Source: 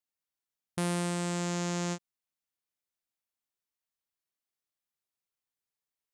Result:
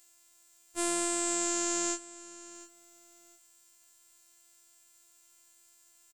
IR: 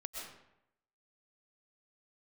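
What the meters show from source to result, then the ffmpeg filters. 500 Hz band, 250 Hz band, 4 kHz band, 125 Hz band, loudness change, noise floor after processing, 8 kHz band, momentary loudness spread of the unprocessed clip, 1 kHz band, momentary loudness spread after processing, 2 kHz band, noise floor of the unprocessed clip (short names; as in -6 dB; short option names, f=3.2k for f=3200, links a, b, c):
+0.5 dB, -2.0 dB, +2.0 dB, -28.0 dB, +3.0 dB, -64 dBFS, +10.5 dB, 8 LU, +0.5 dB, 18 LU, +0.5 dB, under -85 dBFS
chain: -filter_complex "[0:a]equalizer=f=7.5k:w=2.8:g=14,acompressor=mode=upward:threshold=-43dB:ratio=2.5,afftfilt=real='hypot(re,im)*cos(PI*b)':imag='0':win_size=512:overlap=0.75,asplit=2[a][b];[b]aecho=0:1:706|1412:0.126|0.0315[c];[a][c]amix=inputs=2:normalize=0,afftfilt=real='re*2*eq(mod(b,4),0)':imag='im*2*eq(mod(b,4),0)':win_size=2048:overlap=0.75"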